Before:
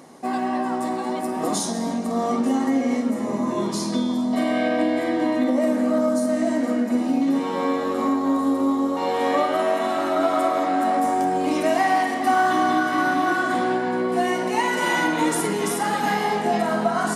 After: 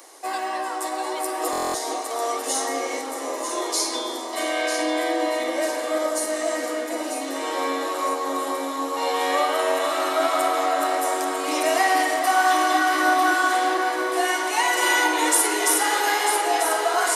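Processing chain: steep high-pass 290 Hz 96 dB/octave; tilt EQ +3 dB/octave; echo whose repeats swap between lows and highs 473 ms, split 1.3 kHz, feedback 66%, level -4 dB; buffer glitch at 1.51 s, samples 1024, times 9

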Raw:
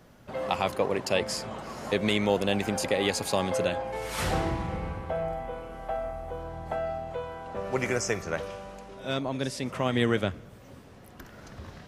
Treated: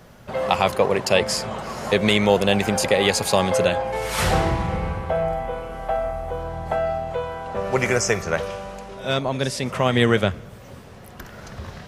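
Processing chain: peaking EQ 290 Hz -7.5 dB 0.39 oct; trim +8.5 dB

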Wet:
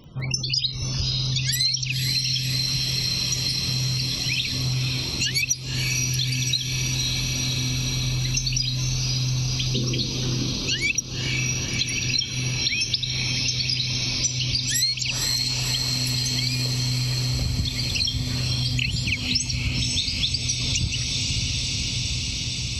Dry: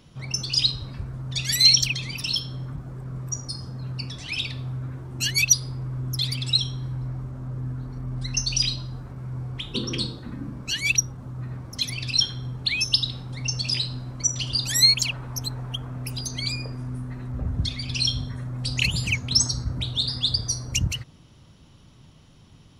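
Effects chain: loudest bins only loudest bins 64; echo that smears into a reverb 524 ms, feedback 79%, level -7 dB; compression 8:1, threshold -27 dBFS, peak gain reduction 16 dB; crackle 17 per s -48 dBFS; trim +6.5 dB

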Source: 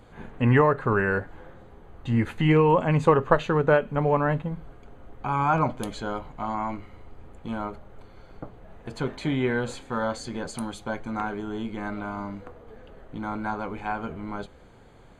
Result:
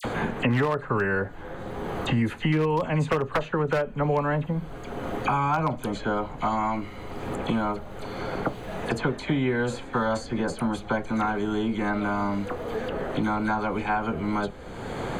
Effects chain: phase dispersion lows, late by 45 ms, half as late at 2.2 kHz; wavefolder -12 dBFS; three bands compressed up and down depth 100%

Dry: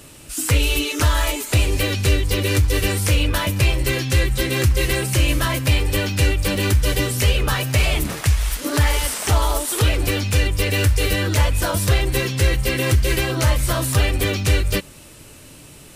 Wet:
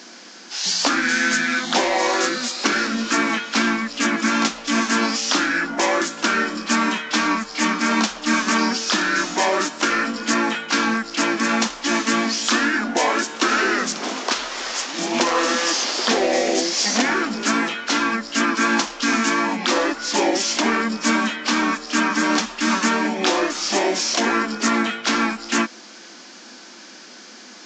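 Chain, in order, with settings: elliptic high-pass 380 Hz, stop band 40 dB; speed mistake 78 rpm record played at 45 rpm; trim +4.5 dB; A-law 128 kbps 16 kHz

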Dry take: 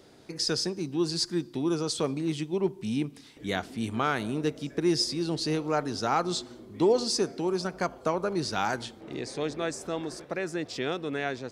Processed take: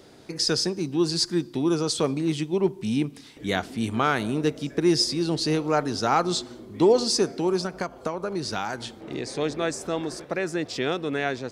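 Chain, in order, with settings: 7.59–9.31 s: compression 5:1, threshold -30 dBFS, peak gain reduction 8.5 dB; trim +4.5 dB

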